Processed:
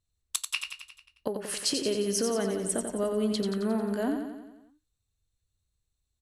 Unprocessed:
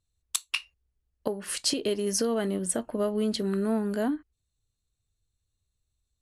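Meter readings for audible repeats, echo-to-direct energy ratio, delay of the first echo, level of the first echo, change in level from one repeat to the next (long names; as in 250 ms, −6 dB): 6, −4.5 dB, 89 ms, −6.0 dB, −5.0 dB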